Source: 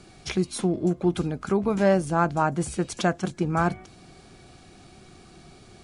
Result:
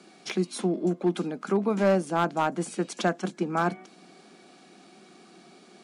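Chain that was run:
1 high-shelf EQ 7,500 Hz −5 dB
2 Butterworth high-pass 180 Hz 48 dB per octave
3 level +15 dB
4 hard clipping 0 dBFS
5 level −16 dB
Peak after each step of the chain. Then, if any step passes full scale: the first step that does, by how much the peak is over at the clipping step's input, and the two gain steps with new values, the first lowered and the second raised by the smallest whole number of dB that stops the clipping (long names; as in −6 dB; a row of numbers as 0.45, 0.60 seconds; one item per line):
−9.5, −9.5, +5.5, 0.0, −16.0 dBFS
step 3, 5.5 dB
step 3 +9 dB, step 5 −10 dB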